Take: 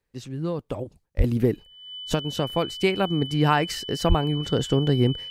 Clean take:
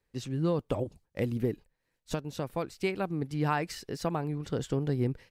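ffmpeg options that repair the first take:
ffmpeg -i in.wav -filter_complex "[0:a]bandreject=frequency=3000:width=30,asplit=3[link_01][link_02][link_03];[link_01]afade=type=out:start_time=1.17:duration=0.02[link_04];[link_02]highpass=frequency=140:width=0.5412,highpass=frequency=140:width=1.3066,afade=type=in:start_time=1.17:duration=0.02,afade=type=out:start_time=1.29:duration=0.02[link_05];[link_03]afade=type=in:start_time=1.29:duration=0.02[link_06];[link_04][link_05][link_06]amix=inputs=3:normalize=0,asplit=3[link_07][link_08][link_09];[link_07]afade=type=out:start_time=4.08:duration=0.02[link_10];[link_08]highpass=frequency=140:width=0.5412,highpass=frequency=140:width=1.3066,afade=type=in:start_time=4.08:duration=0.02,afade=type=out:start_time=4.2:duration=0.02[link_11];[link_09]afade=type=in:start_time=4.2:duration=0.02[link_12];[link_10][link_11][link_12]amix=inputs=3:normalize=0,asetnsamples=nb_out_samples=441:pad=0,asendcmd='1.24 volume volume -8.5dB',volume=0dB" out.wav

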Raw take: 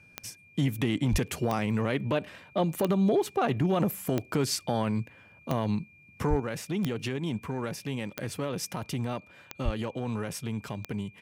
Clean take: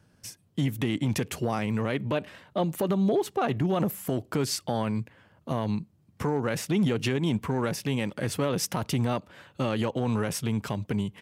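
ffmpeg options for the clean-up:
ffmpeg -i in.wav -filter_complex "[0:a]adeclick=threshold=4,bandreject=frequency=2400:width=30,asplit=3[link_01][link_02][link_03];[link_01]afade=type=out:start_time=1.11:duration=0.02[link_04];[link_02]highpass=frequency=140:width=0.5412,highpass=frequency=140:width=1.3066,afade=type=in:start_time=1.11:duration=0.02,afade=type=out:start_time=1.23:duration=0.02[link_05];[link_03]afade=type=in:start_time=1.23:duration=0.02[link_06];[link_04][link_05][link_06]amix=inputs=3:normalize=0,asplit=3[link_07][link_08][link_09];[link_07]afade=type=out:start_time=6.29:duration=0.02[link_10];[link_08]highpass=frequency=140:width=0.5412,highpass=frequency=140:width=1.3066,afade=type=in:start_time=6.29:duration=0.02,afade=type=out:start_time=6.41:duration=0.02[link_11];[link_09]afade=type=in:start_time=6.41:duration=0.02[link_12];[link_10][link_11][link_12]amix=inputs=3:normalize=0,asplit=3[link_13][link_14][link_15];[link_13]afade=type=out:start_time=9.64:duration=0.02[link_16];[link_14]highpass=frequency=140:width=0.5412,highpass=frequency=140:width=1.3066,afade=type=in:start_time=9.64:duration=0.02,afade=type=out:start_time=9.76:duration=0.02[link_17];[link_15]afade=type=in:start_time=9.76:duration=0.02[link_18];[link_16][link_17][link_18]amix=inputs=3:normalize=0,asetnsamples=nb_out_samples=441:pad=0,asendcmd='6.4 volume volume 5.5dB',volume=0dB" out.wav

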